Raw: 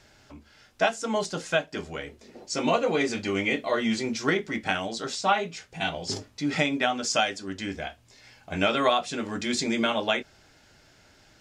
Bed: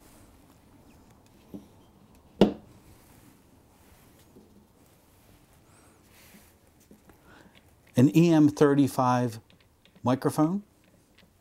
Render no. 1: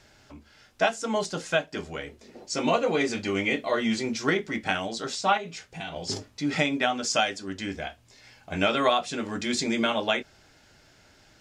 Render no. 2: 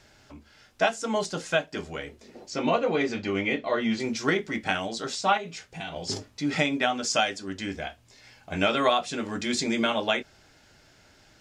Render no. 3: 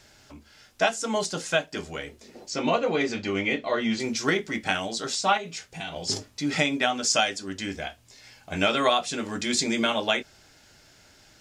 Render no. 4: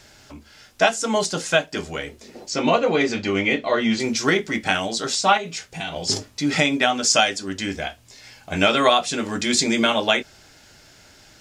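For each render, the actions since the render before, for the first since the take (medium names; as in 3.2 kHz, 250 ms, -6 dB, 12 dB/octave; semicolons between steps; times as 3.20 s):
5.37–5.96 s: compression 5:1, threshold -32 dBFS
2.50–4.00 s: distance through air 120 m
treble shelf 4.4 kHz +7.5 dB
trim +5.5 dB; peak limiter -3 dBFS, peak gain reduction 1.5 dB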